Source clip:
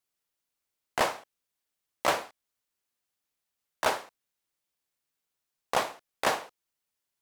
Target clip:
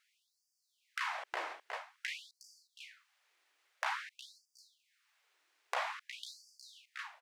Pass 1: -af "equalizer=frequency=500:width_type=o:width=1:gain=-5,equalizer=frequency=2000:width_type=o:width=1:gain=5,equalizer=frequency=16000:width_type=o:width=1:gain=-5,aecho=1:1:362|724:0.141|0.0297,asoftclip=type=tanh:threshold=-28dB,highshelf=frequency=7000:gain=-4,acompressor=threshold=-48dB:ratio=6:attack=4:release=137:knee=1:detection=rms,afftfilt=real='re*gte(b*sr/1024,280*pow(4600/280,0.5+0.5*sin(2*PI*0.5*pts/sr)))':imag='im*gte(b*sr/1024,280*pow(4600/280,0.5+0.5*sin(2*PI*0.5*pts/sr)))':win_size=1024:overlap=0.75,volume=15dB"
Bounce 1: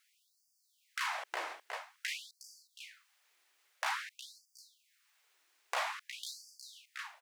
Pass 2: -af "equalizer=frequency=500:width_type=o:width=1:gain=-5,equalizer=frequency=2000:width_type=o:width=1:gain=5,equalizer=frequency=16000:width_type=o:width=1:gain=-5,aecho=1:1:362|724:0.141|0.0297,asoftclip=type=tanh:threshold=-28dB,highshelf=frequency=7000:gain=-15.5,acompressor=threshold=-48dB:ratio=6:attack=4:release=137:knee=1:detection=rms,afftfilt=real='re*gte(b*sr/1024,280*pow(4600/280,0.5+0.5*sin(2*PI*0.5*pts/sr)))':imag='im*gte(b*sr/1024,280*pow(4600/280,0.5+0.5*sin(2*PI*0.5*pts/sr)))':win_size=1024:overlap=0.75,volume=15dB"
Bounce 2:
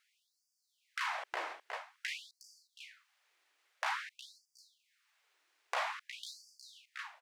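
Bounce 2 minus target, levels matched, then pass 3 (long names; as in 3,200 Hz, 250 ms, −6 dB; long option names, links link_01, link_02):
soft clipping: distortion +6 dB
-af "equalizer=frequency=500:width_type=o:width=1:gain=-5,equalizer=frequency=2000:width_type=o:width=1:gain=5,equalizer=frequency=16000:width_type=o:width=1:gain=-5,aecho=1:1:362|724:0.141|0.0297,asoftclip=type=tanh:threshold=-20.5dB,highshelf=frequency=7000:gain=-15.5,acompressor=threshold=-48dB:ratio=6:attack=4:release=137:knee=1:detection=rms,afftfilt=real='re*gte(b*sr/1024,280*pow(4600/280,0.5+0.5*sin(2*PI*0.5*pts/sr)))':imag='im*gte(b*sr/1024,280*pow(4600/280,0.5+0.5*sin(2*PI*0.5*pts/sr)))':win_size=1024:overlap=0.75,volume=15dB"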